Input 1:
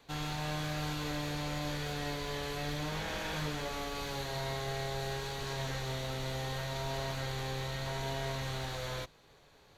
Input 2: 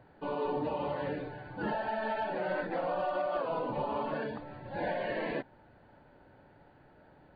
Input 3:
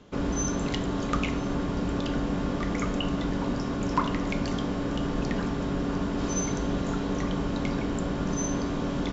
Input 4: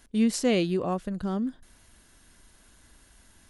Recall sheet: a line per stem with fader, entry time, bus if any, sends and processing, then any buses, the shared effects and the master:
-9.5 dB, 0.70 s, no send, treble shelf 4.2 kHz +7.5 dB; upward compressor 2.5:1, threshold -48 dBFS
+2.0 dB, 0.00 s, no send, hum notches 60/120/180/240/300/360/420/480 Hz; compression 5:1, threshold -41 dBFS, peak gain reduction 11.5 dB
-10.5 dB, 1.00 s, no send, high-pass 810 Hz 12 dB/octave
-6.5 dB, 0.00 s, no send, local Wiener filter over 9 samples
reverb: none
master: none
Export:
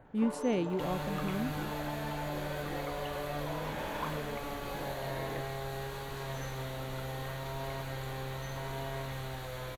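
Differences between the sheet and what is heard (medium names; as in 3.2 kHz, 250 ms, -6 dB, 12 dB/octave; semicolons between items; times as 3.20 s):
stem 1 -9.5 dB -> -1.5 dB; stem 3: entry 1.00 s -> 0.05 s; master: extra peaking EQ 5.5 kHz -12.5 dB 1.6 oct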